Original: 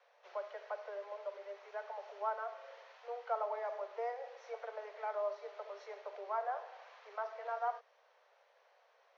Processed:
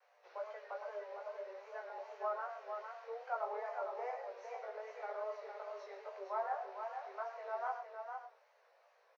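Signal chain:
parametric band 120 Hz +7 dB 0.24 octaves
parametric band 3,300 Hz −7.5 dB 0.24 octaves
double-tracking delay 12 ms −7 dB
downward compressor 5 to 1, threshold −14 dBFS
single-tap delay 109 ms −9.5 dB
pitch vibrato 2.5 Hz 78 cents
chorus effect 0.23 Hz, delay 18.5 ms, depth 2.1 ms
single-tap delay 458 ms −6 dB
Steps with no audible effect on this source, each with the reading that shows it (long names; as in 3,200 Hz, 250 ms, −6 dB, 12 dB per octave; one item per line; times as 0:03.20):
parametric band 120 Hz: nothing at its input below 380 Hz
downward compressor, threshold −14 dBFS: peak of its input −23.5 dBFS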